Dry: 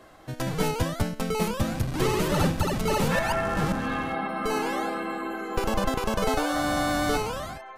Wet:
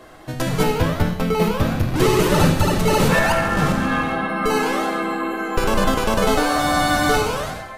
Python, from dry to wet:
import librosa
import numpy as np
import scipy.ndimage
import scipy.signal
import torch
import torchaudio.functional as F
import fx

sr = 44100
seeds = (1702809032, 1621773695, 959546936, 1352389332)

y = fx.peak_eq(x, sr, hz=8300.0, db=-10.0, octaves=1.4, at=(0.63, 1.96))
y = fx.rev_gated(y, sr, seeds[0], gate_ms=340, shape='falling', drr_db=4.0)
y = y * 10.0 ** (6.5 / 20.0)